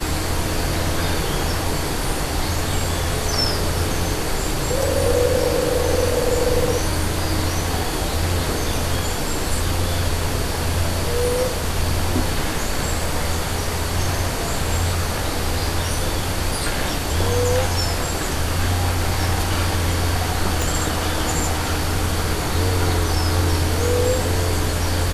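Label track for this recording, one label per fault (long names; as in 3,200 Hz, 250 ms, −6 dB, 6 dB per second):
20.620000	20.620000	click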